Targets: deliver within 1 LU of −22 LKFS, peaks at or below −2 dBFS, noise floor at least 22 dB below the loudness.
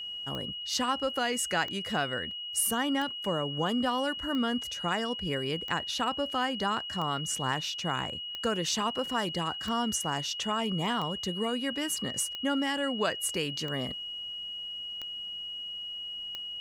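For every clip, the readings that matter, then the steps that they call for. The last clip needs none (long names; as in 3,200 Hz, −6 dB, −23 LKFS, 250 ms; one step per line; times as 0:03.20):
number of clicks 13; interfering tone 2,900 Hz; level of the tone −36 dBFS; integrated loudness −31.0 LKFS; sample peak −14.0 dBFS; target loudness −22.0 LKFS
→ click removal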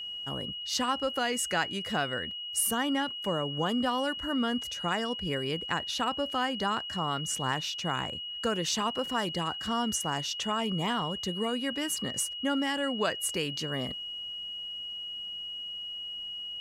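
number of clicks 0; interfering tone 2,900 Hz; level of the tone −36 dBFS
→ notch filter 2,900 Hz, Q 30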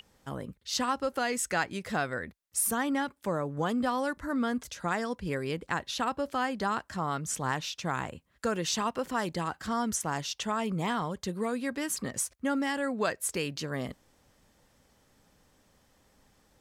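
interfering tone none found; integrated loudness −32.0 LKFS; sample peak −15.0 dBFS; target loudness −22.0 LKFS
→ level +10 dB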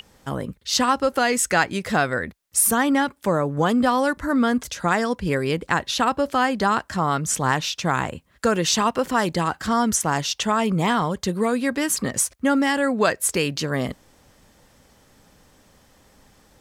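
integrated loudness −22.0 LKFS; sample peak −5.0 dBFS; background noise floor −57 dBFS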